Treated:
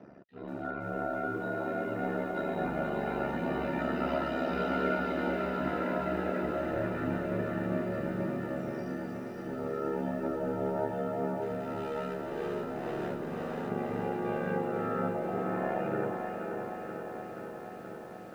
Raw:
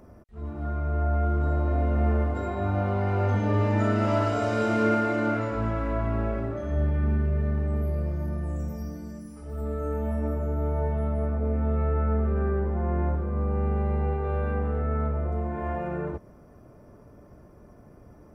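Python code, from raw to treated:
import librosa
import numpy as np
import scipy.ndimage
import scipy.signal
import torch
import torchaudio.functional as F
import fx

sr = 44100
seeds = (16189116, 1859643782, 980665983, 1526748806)

y = scipy.signal.sosfilt(scipy.signal.butter(4, 140.0, 'highpass', fs=sr, output='sos'), x)
y = fx.dereverb_blind(y, sr, rt60_s=0.6)
y = scipy.signal.sosfilt(scipy.signal.butter(4, 4000.0, 'lowpass', fs=sr, output='sos'), y)
y = fx.high_shelf(y, sr, hz=2100.0, db=8.0)
y = fx.rider(y, sr, range_db=4, speed_s=0.5)
y = fx.clip_hard(y, sr, threshold_db=-31.5, at=(11.38, 13.7))
y = fx.notch_comb(y, sr, f0_hz=1100.0)
y = y * np.sin(2.0 * np.pi * 35.0 * np.arange(len(y)) / sr)
y = fx.echo_feedback(y, sr, ms=581, feedback_pct=43, wet_db=-8.0)
y = fx.echo_crushed(y, sr, ms=478, feedback_pct=80, bits=10, wet_db=-8.0)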